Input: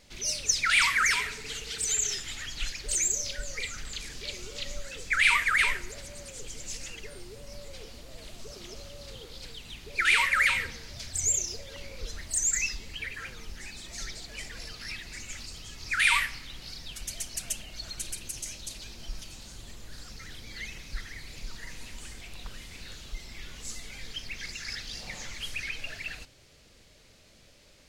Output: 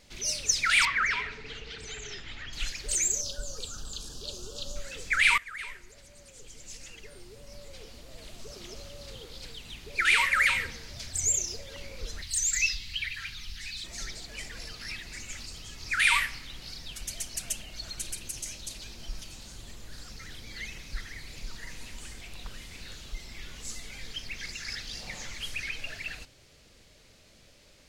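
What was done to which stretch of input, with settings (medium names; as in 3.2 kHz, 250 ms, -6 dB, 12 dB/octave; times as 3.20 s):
0.85–2.53 s: distance through air 230 m
3.21–4.76 s: Butterworth band-stop 2.1 kHz, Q 1.1
5.38–8.66 s: fade in, from -18.5 dB
12.22–13.84 s: FFT filter 110 Hz 0 dB, 250 Hz -9 dB, 360 Hz -11 dB, 530 Hz -27 dB, 770 Hz -11 dB, 4 kHz +10 dB, 7.2 kHz -2 dB, 13 kHz +1 dB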